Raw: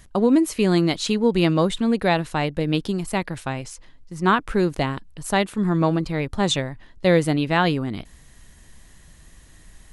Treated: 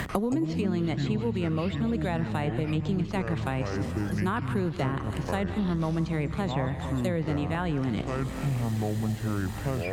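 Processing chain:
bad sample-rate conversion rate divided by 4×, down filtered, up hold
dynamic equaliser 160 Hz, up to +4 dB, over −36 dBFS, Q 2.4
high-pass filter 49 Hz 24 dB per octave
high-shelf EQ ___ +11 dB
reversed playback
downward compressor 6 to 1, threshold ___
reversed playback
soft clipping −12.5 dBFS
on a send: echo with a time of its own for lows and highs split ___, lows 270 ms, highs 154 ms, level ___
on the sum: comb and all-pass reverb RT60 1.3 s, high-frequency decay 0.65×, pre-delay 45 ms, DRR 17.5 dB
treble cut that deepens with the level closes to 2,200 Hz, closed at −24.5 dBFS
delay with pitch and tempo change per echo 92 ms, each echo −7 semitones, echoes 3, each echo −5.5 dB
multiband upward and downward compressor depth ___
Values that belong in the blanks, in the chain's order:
5,400 Hz, −26 dBFS, 860 Hz, −15 dB, 100%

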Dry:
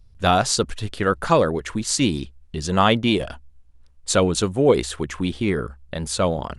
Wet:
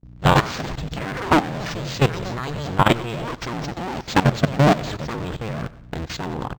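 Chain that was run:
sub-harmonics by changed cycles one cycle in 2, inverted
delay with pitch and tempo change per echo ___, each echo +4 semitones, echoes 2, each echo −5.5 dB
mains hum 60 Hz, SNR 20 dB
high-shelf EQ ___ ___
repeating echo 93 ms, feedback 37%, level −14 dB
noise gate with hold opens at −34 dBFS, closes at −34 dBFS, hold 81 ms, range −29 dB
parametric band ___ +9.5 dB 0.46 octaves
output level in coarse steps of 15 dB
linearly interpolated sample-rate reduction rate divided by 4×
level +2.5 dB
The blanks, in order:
168 ms, 9,700 Hz, −6 dB, 140 Hz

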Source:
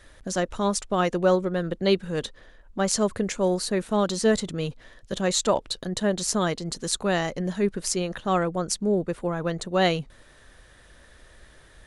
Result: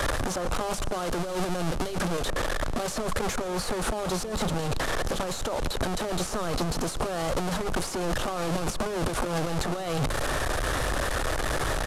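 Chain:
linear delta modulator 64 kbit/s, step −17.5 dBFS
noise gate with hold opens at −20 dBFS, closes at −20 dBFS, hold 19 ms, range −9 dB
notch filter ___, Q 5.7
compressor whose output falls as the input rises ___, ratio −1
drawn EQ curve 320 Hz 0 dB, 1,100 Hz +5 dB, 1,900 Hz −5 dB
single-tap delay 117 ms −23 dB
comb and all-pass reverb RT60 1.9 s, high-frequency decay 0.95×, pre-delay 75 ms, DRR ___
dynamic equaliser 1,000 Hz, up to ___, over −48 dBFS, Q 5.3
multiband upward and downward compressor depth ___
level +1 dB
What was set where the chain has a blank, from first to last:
200 Hz, −30 dBFS, 20 dB, −5 dB, 100%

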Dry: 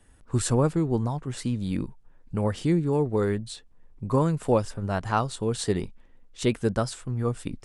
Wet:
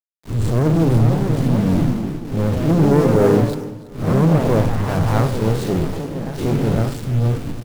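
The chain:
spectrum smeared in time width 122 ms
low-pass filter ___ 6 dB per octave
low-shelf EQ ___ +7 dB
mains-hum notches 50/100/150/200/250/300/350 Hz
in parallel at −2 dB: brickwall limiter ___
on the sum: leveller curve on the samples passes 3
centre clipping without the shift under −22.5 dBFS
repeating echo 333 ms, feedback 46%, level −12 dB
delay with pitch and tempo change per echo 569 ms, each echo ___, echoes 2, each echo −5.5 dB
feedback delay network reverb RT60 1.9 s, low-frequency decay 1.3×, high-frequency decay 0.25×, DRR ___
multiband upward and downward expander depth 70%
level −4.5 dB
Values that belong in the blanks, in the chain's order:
1,100 Hz, 380 Hz, −17 dBFS, +3 semitones, 15 dB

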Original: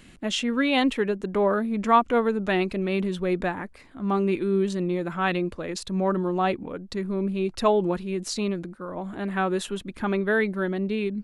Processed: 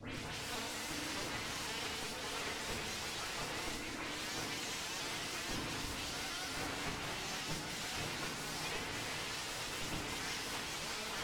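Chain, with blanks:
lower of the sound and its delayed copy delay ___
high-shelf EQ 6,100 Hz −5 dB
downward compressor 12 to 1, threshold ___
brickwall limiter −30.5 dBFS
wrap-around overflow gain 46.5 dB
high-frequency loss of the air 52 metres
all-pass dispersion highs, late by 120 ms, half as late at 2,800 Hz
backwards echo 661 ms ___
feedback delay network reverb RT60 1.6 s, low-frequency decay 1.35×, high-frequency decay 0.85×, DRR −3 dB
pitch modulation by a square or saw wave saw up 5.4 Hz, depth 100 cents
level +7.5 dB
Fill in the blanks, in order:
8.4 ms, −33 dBFS, −22.5 dB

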